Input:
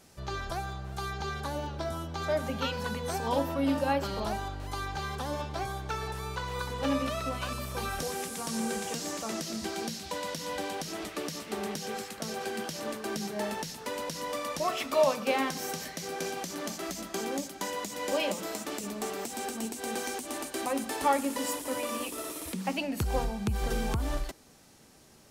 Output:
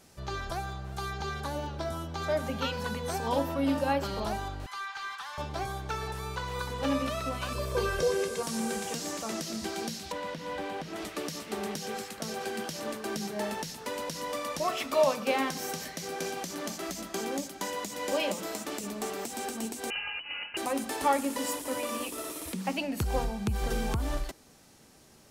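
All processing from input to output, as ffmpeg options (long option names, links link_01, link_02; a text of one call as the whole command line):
ffmpeg -i in.wav -filter_complex "[0:a]asettb=1/sr,asplit=3[link_01][link_02][link_03];[link_01]atrim=end=4.664[link_04];[link_02]atrim=start=4.66:end=5.38,asetpts=PTS-STARTPTS,afade=type=in:duration=0.004:curve=qsin,afade=type=out:start_time=0.716:duration=0.004:curve=qsin,highpass=frequency=1100:width=0.5412,highpass=frequency=1100:width=1.3066,asplit=2[link_05][link_06];[link_06]highpass=frequency=720:poles=1,volume=11dB,asoftclip=type=tanh:threshold=-26.5dB[link_07];[link_05][link_07]amix=inputs=2:normalize=0,lowpass=frequency=2100:poles=1,volume=-6dB[link_08];[link_03]atrim=start=5.376[link_09];[link_04][link_08]acrossfade=duration=0.004:curve1=hsin:curve2=qsin[link_10];[link_10][link_09]acrossfade=duration=0.004:curve1=qsin:curve2=hsin,asettb=1/sr,asplit=3[link_11][link_12][link_13];[link_11]atrim=end=7.554[link_14];[link_12]atrim=start=7.55:end=8.43,asetpts=PTS-STARTPTS,afade=type=in:duration=0.004:curve=qsin,afade=type=out:start_time=0.876:duration=0.004:curve=qsin,acrossover=split=7100[link_15][link_16];[link_16]acompressor=threshold=-51dB:ratio=4:attack=1:release=60[link_17];[link_15][link_17]amix=inputs=2:normalize=0,equalizer=frequency=390:width=1.3:gain=9,aecho=1:1:1.9:0.68,atrim=end_sample=38808[link_18];[link_13]atrim=start=8.426[link_19];[link_14][link_18]acrossfade=duration=0.004:curve1=hsin:curve2=qsin[link_20];[link_20][link_19]acrossfade=duration=0.004:curve1=qsin:curve2=hsin,asettb=1/sr,asplit=3[link_21][link_22][link_23];[link_21]atrim=end=10.124[link_24];[link_22]atrim=start=10.12:end=10.96,asetpts=PTS-STARTPTS,afade=type=in:duration=0.004:curve=qsin,afade=type=out:start_time=0.836:duration=0.004:curve=qsin,acrossover=split=3300[link_25][link_26];[link_26]acompressor=threshold=-56dB:ratio=4:attack=1:release=60[link_27];[link_25][link_27]amix=inputs=2:normalize=0,volume=30dB,asoftclip=hard,volume=-30dB[link_28];[link_23]atrim=start=10.956[link_29];[link_24][link_28]acrossfade=duration=0.004:curve1=hsin:curve2=qsin[link_30];[link_30][link_29]acrossfade=duration=0.004:curve1=qsin:curve2=hsin,asettb=1/sr,asplit=3[link_31][link_32][link_33];[link_31]atrim=end=19.904[link_34];[link_32]atrim=start=19.9:end=20.57,asetpts=PTS-STARTPTS,afade=type=in:duration=0.004:curve=qsin,afade=type=out:start_time=0.666:duration=0.004:curve=qsin,highpass=100,lowpass=frequency=2700:width_type=q:width=0.5098,lowpass=frequency=2700:width_type=q:width=0.6013,lowpass=frequency=2700:width_type=q:width=0.9,lowpass=frequency=2700:width_type=q:width=2.563,afreqshift=-3200[link_35];[link_33]atrim=start=20.566[link_36];[link_34][link_35]acrossfade=duration=0.004:curve1=hsin:curve2=qsin[link_37];[link_37][link_36]acrossfade=duration=0.004:curve1=qsin:curve2=hsin" out.wav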